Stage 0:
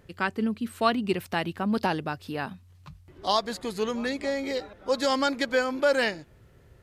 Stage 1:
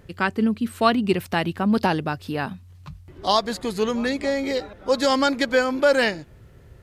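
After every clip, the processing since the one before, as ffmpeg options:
ffmpeg -i in.wav -af "lowshelf=frequency=220:gain=4,volume=4.5dB" out.wav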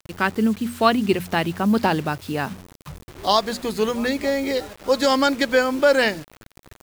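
ffmpeg -i in.wav -af "bandreject=frequency=60:width_type=h:width=6,bandreject=frequency=120:width_type=h:width=6,bandreject=frequency=180:width_type=h:width=6,bandreject=frequency=240:width_type=h:width=6,acrusher=bits=6:mix=0:aa=0.000001,volume=1.5dB" out.wav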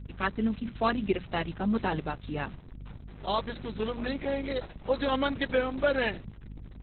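ffmpeg -i in.wav -af "aeval=exprs='val(0)+0.0282*(sin(2*PI*50*n/s)+sin(2*PI*2*50*n/s)/2+sin(2*PI*3*50*n/s)/3+sin(2*PI*4*50*n/s)/4+sin(2*PI*5*50*n/s)/5)':channel_layout=same,volume=-9dB" -ar 48000 -c:a libopus -b:a 6k out.opus

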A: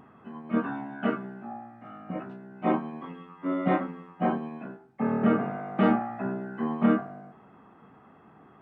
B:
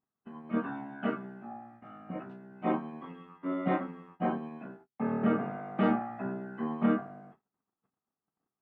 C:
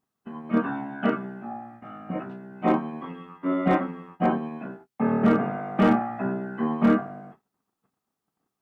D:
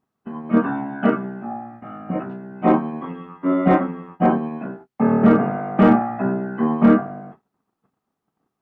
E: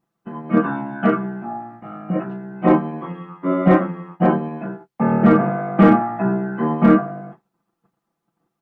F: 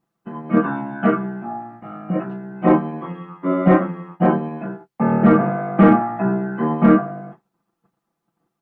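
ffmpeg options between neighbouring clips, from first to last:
ffmpeg -i in.wav -af "agate=range=-35dB:threshold=-49dB:ratio=16:detection=peak,volume=-4.5dB" out.wav
ffmpeg -i in.wav -af "asoftclip=type=hard:threshold=-20.5dB,volume=8dB" out.wav
ffmpeg -i in.wav -af "highshelf=frequency=2800:gain=-11.5,volume=6.5dB" out.wav
ffmpeg -i in.wav -af "aecho=1:1:5.9:0.73" out.wav
ffmpeg -i in.wav -filter_complex "[0:a]acrossover=split=3200[link_01][link_02];[link_02]acompressor=threshold=-54dB:ratio=4:attack=1:release=60[link_03];[link_01][link_03]amix=inputs=2:normalize=0" out.wav

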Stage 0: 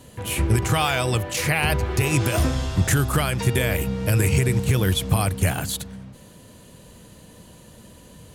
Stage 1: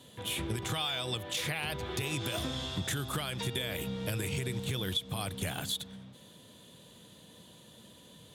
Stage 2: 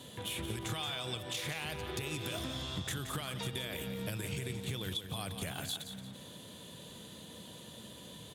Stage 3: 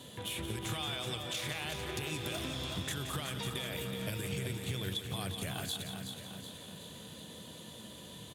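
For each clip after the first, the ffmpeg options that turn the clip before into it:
ffmpeg -i in.wav -af "highpass=120,equalizer=frequency=3500:width=4.7:gain=15,acompressor=threshold=-22dB:ratio=6,volume=-8.5dB" out.wav
ffmpeg -i in.wav -af "acompressor=threshold=-50dB:ratio=2,aecho=1:1:175|350|525|700:0.355|0.135|0.0512|0.0195,aeval=exprs='0.0376*(cos(1*acos(clip(val(0)/0.0376,-1,1)))-cos(1*PI/2))+0.000668*(cos(7*acos(clip(val(0)/0.0376,-1,1)))-cos(7*PI/2))':channel_layout=same,volume=6dB" out.wav
ffmpeg -i in.wav -af "aecho=1:1:375|750|1125|1500|1875|2250:0.422|0.223|0.118|0.0628|0.0333|0.0176" out.wav

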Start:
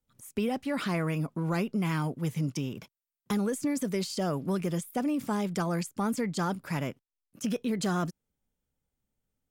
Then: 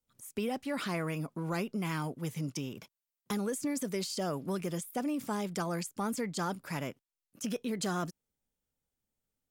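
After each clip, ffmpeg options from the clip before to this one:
ffmpeg -i in.wav -af "bass=frequency=250:gain=-4,treble=frequency=4000:gain=3,volume=-3dB" out.wav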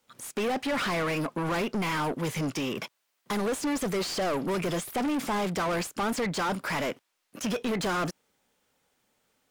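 ffmpeg -i in.wav -filter_complex "[0:a]asplit=2[link_01][link_02];[link_02]highpass=frequency=720:poles=1,volume=30dB,asoftclip=type=tanh:threshold=-21dB[link_03];[link_01][link_03]amix=inputs=2:normalize=0,lowpass=frequency=2600:poles=1,volume=-6dB" out.wav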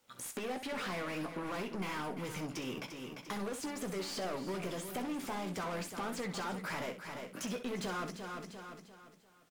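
ffmpeg -i in.wav -filter_complex "[0:a]asplit=2[link_01][link_02];[link_02]aecho=0:1:347|694|1041|1388:0.251|0.0904|0.0326|0.0117[link_03];[link_01][link_03]amix=inputs=2:normalize=0,acompressor=threshold=-42dB:ratio=2.5,asplit=2[link_04][link_05];[link_05]aecho=0:1:16|64:0.398|0.316[link_06];[link_04][link_06]amix=inputs=2:normalize=0,volume=-1dB" out.wav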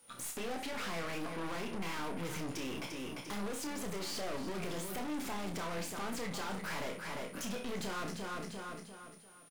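ffmpeg -i in.wav -filter_complex "[0:a]aeval=exprs='val(0)+0.000447*sin(2*PI*9600*n/s)':channel_layout=same,aeval=exprs='(tanh(158*val(0)+0.4)-tanh(0.4))/158':channel_layout=same,asplit=2[link_01][link_02];[link_02]adelay=30,volume=-6.5dB[link_03];[link_01][link_03]amix=inputs=2:normalize=0,volume=5.5dB" out.wav

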